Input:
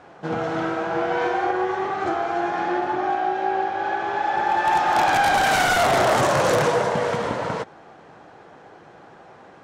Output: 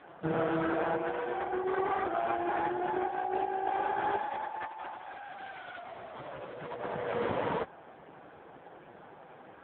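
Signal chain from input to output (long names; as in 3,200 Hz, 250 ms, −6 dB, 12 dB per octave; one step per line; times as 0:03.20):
compressor whose output falls as the input rises −25 dBFS, ratio −0.5
level −5.5 dB
AMR narrowband 5.15 kbit/s 8,000 Hz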